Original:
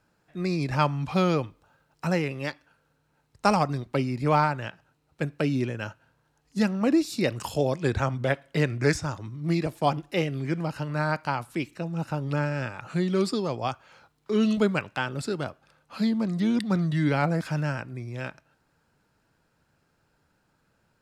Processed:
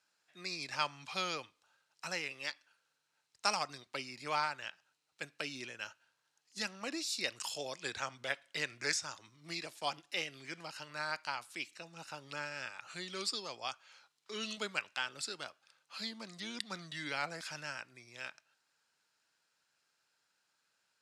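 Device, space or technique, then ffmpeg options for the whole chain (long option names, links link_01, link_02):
piezo pickup straight into a mixer: -af "lowpass=6000,aderivative,volume=5.5dB"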